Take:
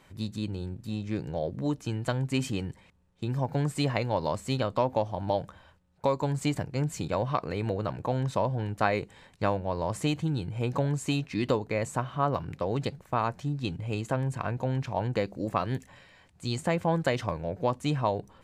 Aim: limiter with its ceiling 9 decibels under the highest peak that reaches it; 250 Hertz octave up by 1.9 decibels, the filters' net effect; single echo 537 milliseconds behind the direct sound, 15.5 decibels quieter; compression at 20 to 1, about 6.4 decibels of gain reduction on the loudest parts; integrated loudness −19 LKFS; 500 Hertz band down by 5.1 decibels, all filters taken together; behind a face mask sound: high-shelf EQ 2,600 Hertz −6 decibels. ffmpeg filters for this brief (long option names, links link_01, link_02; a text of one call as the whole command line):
ffmpeg -i in.wav -af "equalizer=frequency=250:width_type=o:gain=4.5,equalizer=frequency=500:width_type=o:gain=-7,acompressor=threshold=-28dB:ratio=20,alimiter=level_in=3dB:limit=-24dB:level=0:latency=1,volume=-3dB,highshelf=frequency=2600:gain=-6,aecho=1:1:537:0.168,volume=19dB" out.wav